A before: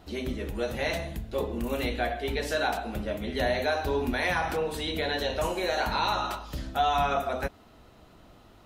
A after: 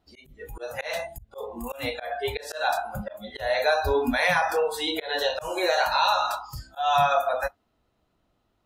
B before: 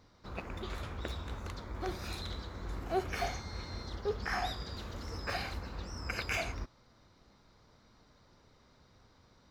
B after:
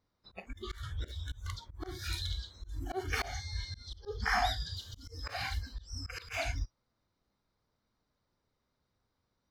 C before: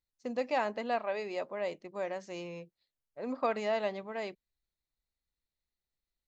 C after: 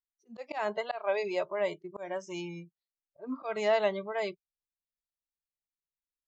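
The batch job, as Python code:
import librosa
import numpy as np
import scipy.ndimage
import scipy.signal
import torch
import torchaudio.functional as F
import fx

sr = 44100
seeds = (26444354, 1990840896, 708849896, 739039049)

y = fx.noise_reduce_blind(x, sr, reduce_db=23)
y = fx.auto_swell(y, sr, attack_ms=189.0)
y = y * librosa.db_to_amplitude(5.5)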